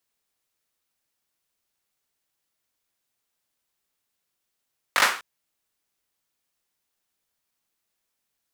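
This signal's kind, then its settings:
synth clap length 0.25 s, apart 20 ms, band 1,400 Hz, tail 0.39 s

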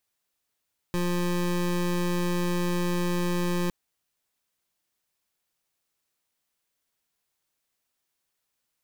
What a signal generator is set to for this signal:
pulse wave 176 Hz, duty 25% −26 dBFS 2.76 s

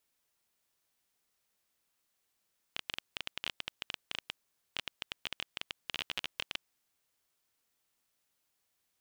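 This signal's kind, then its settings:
Geiger counter clicks 14 per second −17.5 dBFS 3.93 s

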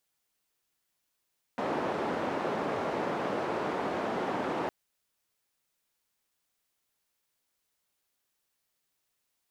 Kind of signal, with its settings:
band-limited noise 220–760 Hz, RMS −32 dBFS 3.11 s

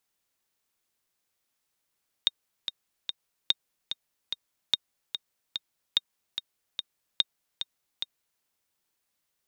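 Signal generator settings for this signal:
click track 146 BPM, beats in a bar 3, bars 5, 3,700 Hz, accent 9 dB −8.5 dBFS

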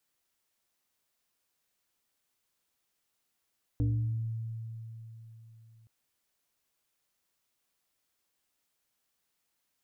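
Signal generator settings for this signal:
two-operator FM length 2.07 s, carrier 113 Hz, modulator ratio 1.58, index 0.92, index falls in 0.92 s exponential, decay 3.80 s, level −24 dB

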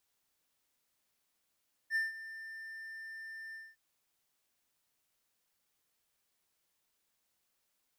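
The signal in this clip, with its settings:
note with an ADSR envelope triangle 1,790 Hz, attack 56 ms, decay 162 ms, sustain −15.5 dB, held 1.64 s, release 218 ms −26 dBFS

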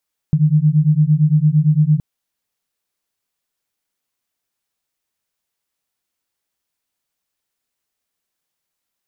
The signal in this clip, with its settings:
two tones that beat 148 Hz, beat 8.8 Hz, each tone −13.5 dBFS 1.67 s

